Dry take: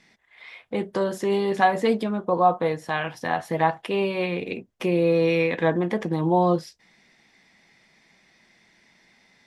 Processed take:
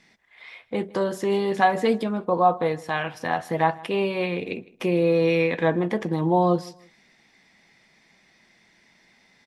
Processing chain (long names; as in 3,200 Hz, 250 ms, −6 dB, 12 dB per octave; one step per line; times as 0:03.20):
repeating echo 157 ms, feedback 29%, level −22.5 dB